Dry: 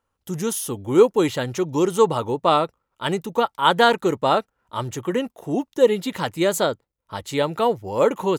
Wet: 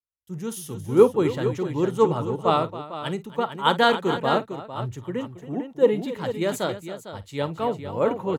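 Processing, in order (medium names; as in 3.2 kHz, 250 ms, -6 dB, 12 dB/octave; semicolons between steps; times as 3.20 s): tone controls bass +6 dB, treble -6 dB; multi-tap echo 49/277/453 ms -15.5/-11/-7.5 dB; three bands expanded up and down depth 70%; trim -5.5 dB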